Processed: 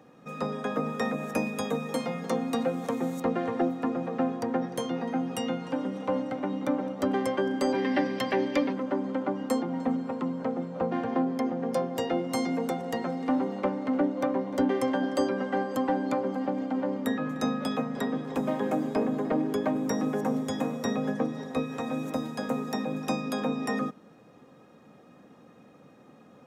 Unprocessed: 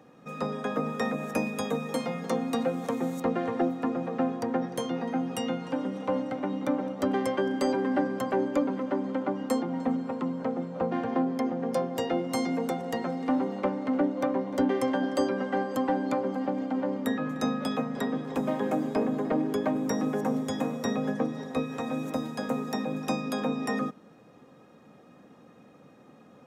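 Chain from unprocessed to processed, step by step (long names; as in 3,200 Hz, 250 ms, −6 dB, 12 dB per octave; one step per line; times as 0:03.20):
gain on a spectral selection 0:07.75–0:08.72, 1,600–6,200 Hz +11 dB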